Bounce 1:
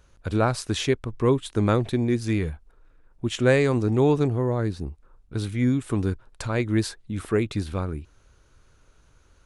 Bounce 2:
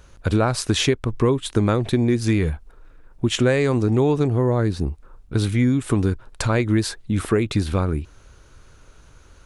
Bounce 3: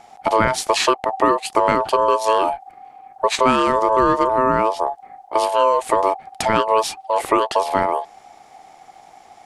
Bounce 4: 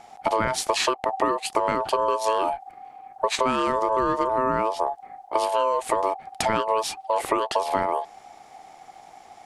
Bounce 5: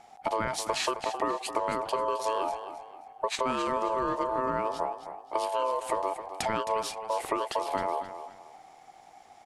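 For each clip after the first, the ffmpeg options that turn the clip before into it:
-af "acompressor=threshold=0.0631:ratio=6,volume=2.82"
-af "aeval=exprs='val(0)*sin(2*PI*770*n/s)':c=same,volume=1.78"
-af "acompressor=threshold=0.141:ratio=6,volume=0.841"
-af "aecho=1:1:265|530|795:0.282|0.0846|0.0254,volume=0.473"

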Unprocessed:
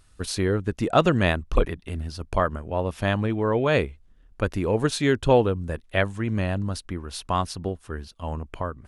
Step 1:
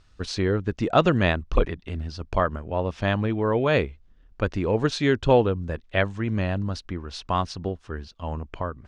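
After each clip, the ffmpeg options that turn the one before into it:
-af "lowpass=f=6200:w=0.5412,lowpass=f=6200:w=1.3066"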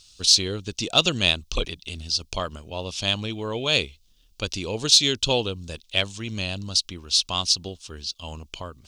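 -af "aexciter=amount=12.2:drive=7.4:freq=2800,volume=0.473"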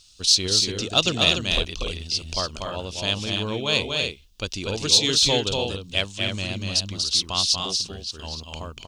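-af "aecho=1:1:240|291:0.631|0.473,volume=0.891"

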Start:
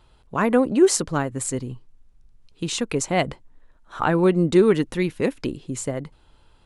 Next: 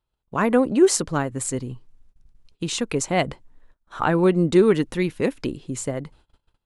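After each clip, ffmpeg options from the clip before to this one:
-af "agate=range=0.0562:threshold=0.00316:ratio=16:detection=peak"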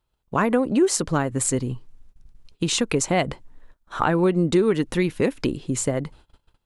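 -af "acompressor=threshold=0.0708:ratio=3,volume=1.78"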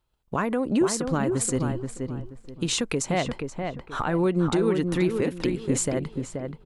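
-filter_complex "[0:a]alimiter=limit=0.178:level=0:latency=1:release=221,asplit=2[s0][s1];[s1]adelay=479,lowpass=f=2000:p=1,volume=0.562,asplit=2[s2][s3];[s3]adelay=479,lowpass=f=2000:p=1,volume=0.28,asplit=2[s4][s5];[s5]adelay=479,lowpass=f=2000:p=1,volume=0.28,asplit=2[s6][s7];[s7]adelay=479,lowpass=f=2000:p=1,volume=0.28[s8];[s2][s4][s6][s8]amix=inputs=4:normalize=0[s9];[s0][s9]amix=inputs=2:normalize=0"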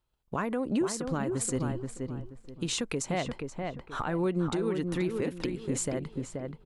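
-af "alimiter=limit=0.158:level=0:latency=1:release=208,volume=0.596"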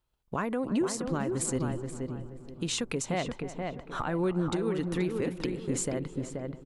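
-filter_complex "[0:a]asplit=2[s0][s1];[s1]adelay=308,lowpass=f=1400:p=1,volume=0.211,asplit=2[s2][s3];[s3]adelay=308,lowpass=f=1400:p=1,volume=0.55,asplit=2[s4][s5];[s5]adelay=308,lowpass=f=1400:p=1,volume=0.55,asplit=2[s6][s7];[s7]adelay=308,lowpass=f=1400:p=1,volume=0.55,asplit=2[s8][s9];[s9]adelay=308,lowpass=f=1400:p=1,volume=0.55,asplit=2[s10][s11];[s11]adelay=308,lowpass=f=1400:p=1,volume=0.55[s12];[s0][s2][s4][s6][s8][s10][s12]amix=inputs=7:normalize=0"

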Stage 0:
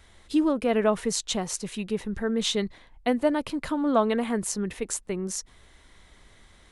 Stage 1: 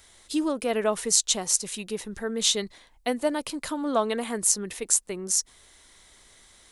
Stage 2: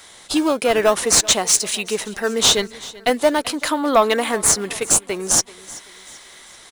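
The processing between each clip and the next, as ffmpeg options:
-af "bass=f=250:g=-7,treble=f=4000:g=12,volume=0.841"
-filter_complex "[0:a]asplit=2[s0][s1];[s1]highpass=f=720:p=1,volume=8.91,asoftclip=type=tanh:threshold=0.891[s2];[s0][s2]amix=inputs=2:normalize=0,lowpass=f=7500:p=1,volume=0.501,asplit=2[s3][s4];[s4]acrusher=samples=13:mix=1:aa=0.000001:lfo=1:lforange=20.8:lforate=0.45,volume=0.299[s5];[s3][s5]amix=inputs=2:normalize=0,aecho=1:1:384|768|1152:0.1|0.043|0.0185,volume=0.891"

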